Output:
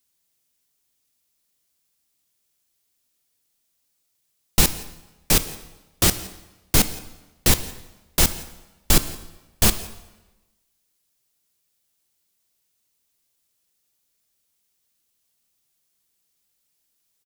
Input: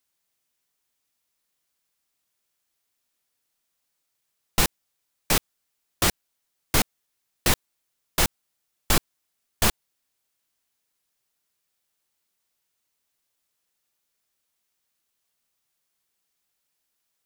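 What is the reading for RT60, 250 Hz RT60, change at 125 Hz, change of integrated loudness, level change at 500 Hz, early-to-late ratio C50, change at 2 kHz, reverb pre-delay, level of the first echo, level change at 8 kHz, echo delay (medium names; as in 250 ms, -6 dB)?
1.1 s, 1.1 s, +5.5 dB, +4.0 dB, +2.0 dB, 13.5 dB, 0.0 dB, 11 ms, -22.0 dB, +5.5 dB, 170 ms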